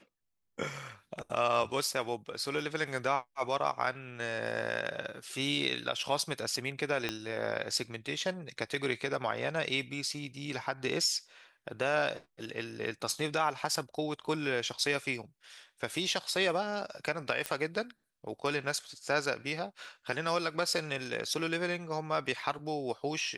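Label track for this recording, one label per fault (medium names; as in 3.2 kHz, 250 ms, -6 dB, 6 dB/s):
7.090000	7.090000	pop -16 dBFS
17.460000	17.460000	pop -16 dBFS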